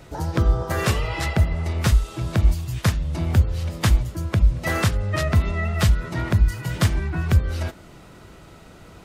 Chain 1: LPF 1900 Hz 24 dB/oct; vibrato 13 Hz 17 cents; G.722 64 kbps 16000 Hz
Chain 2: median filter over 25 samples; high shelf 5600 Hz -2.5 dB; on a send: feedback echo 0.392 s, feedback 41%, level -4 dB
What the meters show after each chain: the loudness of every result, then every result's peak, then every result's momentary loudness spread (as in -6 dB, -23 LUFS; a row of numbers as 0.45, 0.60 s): -23.0, -22.0 LUFS; -6.5, -6.5 dBFS; 4, 6 LU